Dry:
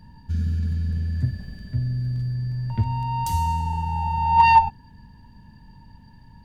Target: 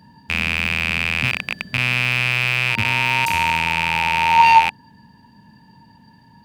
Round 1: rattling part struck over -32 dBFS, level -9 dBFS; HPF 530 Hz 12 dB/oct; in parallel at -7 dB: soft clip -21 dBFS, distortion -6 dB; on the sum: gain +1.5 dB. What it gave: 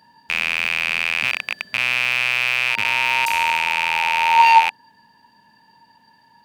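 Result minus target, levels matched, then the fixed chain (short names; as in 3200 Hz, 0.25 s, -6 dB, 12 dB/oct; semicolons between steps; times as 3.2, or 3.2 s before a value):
250 Hz band -13.0 dB
rattling part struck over -32 dBFS, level -9 dBFS; HPF 180 Hz 12 dB/oct; in parallel at -7 dB: soft clip -21 dBFS, distortion -6 dB; on the sum: gain +1.5 dB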